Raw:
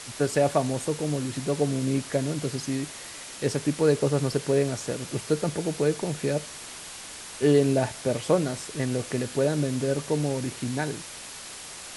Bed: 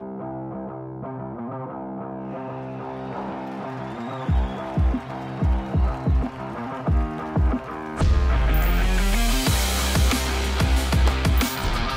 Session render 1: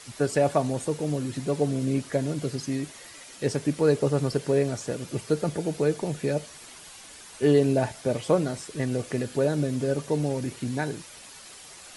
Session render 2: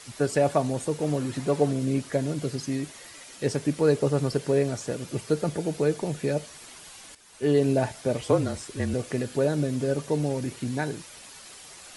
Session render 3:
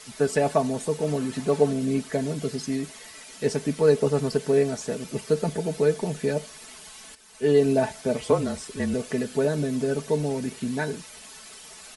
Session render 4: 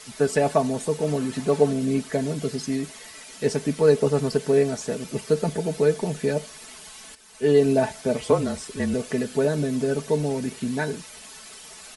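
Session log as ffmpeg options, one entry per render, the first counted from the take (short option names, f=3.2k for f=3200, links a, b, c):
-af "afftdn=nr=8:nf=-41"
-filter_complex "[0:a]asettb=1/sr,asplit=3[a][b][c];[a]atrim=end=1.014[d];[b]atrim=start=1.01:end=1.73,asetpts=PTS-STARTPTS,afade=t=in:d=0.004:c=qsin,afade=t=out:st=0.716:d=0.004:c=qsin,equalizer=f=1k:w=0.56:g=5[e];[c]atrim=start=1.726[f];[d][e]acrossfade=d=0.004:c1=hsin:c2=qsin[g];[g][f]acrossfade=d=0.004:c1=qsin:c2=hsin,asettb=1/sr,asplit=3[h][i][j];[h]atrim=end=8.214[k];[i]atrim=start=8.21:end=8.94,asetpts=PTS-STARTPTS,afade=t=in:d=0.004:c=qsin,afade=t=out:st=0.726:d=0.004:c=qsin,afreqshift=-35[l];[j]atrim=start=8.936[m];[k][l]acrossfade=d=0.004:c1=hsin:c2=qsin[n];[n][m]acrossfade=d=0.004:c1=qsin:c2=hsin,asplit=2[o][p];[o]atrim=end=7.15,asetpts=PTS-STARTPTS,afade=t=out:st=7.146:d=0.004:c=hsin:silence=0.237137[q];[p]atrim=start=7.15,asetpts=PTS-STARTPTS,afade=t=in:d=0.54:silence=0.237137[r];[q][r]concat=n=2:v=0:a=1"
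-af "aecho=1:1:4.6:0.6"
-af "volume=1.5dB"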